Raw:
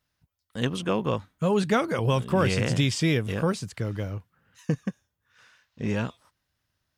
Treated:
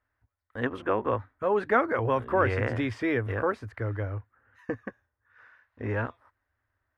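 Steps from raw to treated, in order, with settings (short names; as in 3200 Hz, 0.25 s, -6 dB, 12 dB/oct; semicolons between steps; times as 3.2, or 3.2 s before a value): EQ curve 110 Hz 0 dB, 160 Hz -25 dB, 250 Hz -2 dB, 1800 Hz +4 dB, 2900 Hz -13 dB, 7700 Hz -26 dB, 12000 Hz -19 dB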